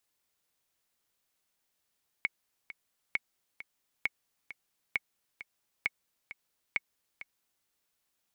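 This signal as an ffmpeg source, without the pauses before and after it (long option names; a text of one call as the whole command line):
ffmpeg -f lavfi -i "aevalsrc='pow(10,(-15-14.5*gte(mod(t,2*60/133),60/133))/20)*sin(2*PI*2210*mod(t,60/133))*exp(-6.91*mod(t,60/133)/0.03)':duration=5.41:sample_rate=44100" out.wav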